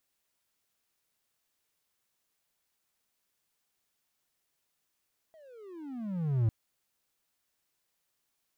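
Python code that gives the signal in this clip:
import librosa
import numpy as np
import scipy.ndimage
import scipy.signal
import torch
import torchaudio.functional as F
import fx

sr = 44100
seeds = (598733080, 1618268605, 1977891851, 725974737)

y = fx.riser_tone(sr, length_s=1.15, level_db=-20, wave='triangle', hz=659.0, rise_st=-31.5, swell_db=31.5)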